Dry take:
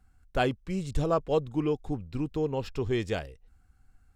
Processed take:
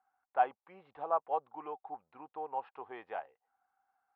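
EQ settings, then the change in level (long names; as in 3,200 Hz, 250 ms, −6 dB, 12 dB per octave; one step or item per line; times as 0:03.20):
four-pole ladder band-pass 1,100 Hz, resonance 40%
high-frequency loss of the air 420 metres
parametric band 780 Hz +9 dB 0.33 octaves
+7.0 dB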